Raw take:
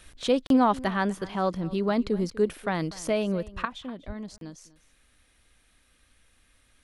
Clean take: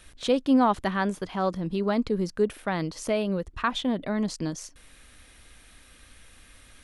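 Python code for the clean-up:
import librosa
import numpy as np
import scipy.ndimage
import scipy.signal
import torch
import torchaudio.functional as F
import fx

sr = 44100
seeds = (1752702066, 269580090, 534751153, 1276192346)

y = fx.highpass(x, sr, hz=140.0, slope=24, at=(4.06, 4.18), fade=0.02)
y = fx.fix_interpolate(y, sr, at_s=(0.47, 4.38), length_ms=32.0)
y = fx.fix_echo_inverse(y, sr, delay_ms=246, level_db=-19.5)
y = fx.gain(y, sr, db=fx.steps((0.0, 0.0), (3.65, 11.0)))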